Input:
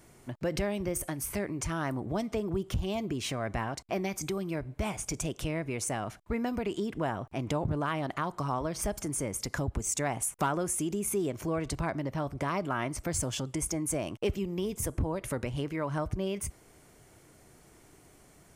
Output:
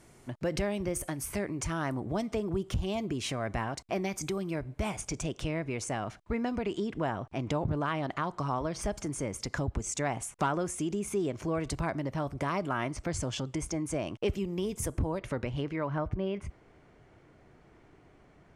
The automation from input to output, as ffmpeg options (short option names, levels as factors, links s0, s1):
-af "asetnsamples=n=441:p=0,asendcmd='5.01 lowpass f 6700;11.55 lowpass f 11000;12.91 lowpass f 5900;14.28 lowpass f 11000;15.19 lowpass f 4600;15.87 lowpass f 2600',lowpass=11000"